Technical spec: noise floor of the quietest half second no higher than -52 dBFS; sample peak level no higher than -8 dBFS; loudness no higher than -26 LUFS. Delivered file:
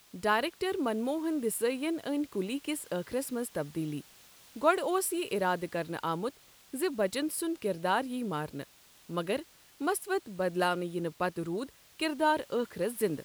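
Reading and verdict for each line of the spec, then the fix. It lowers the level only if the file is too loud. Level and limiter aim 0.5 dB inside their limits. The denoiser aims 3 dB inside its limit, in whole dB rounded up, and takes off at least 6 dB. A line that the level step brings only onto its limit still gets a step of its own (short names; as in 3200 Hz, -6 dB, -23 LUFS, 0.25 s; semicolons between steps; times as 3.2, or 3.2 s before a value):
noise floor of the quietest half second -57 dBFS: OK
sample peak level -11.5 dBFS: OK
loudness -32.5 LUFS: OK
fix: none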